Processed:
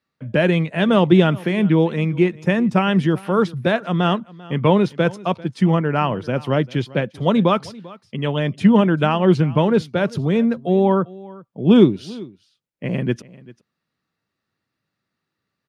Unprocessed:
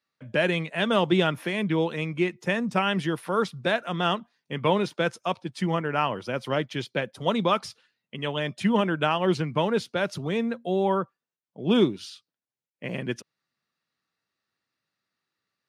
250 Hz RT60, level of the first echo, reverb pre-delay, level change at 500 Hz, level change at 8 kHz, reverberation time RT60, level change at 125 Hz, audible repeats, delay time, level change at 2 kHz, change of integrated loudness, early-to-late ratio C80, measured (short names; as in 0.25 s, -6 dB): none, -21.0 dB, none, +7.0 dB, n/a, none, +11.5 dB, 1, 0.393 s, +3.0 dB, +8.0 dB, none